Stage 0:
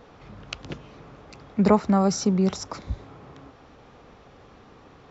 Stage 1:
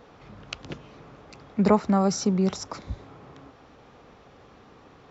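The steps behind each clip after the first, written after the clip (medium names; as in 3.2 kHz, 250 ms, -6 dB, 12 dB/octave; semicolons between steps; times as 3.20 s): bass shelf 69 Hz -5.5 dB; trim -1 dB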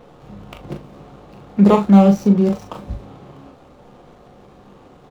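median filter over 25 samples; doubling 40 ms -7 dB; reverberation, pre-delay 6 ms, DRR 6.5 dB; trim +6 dB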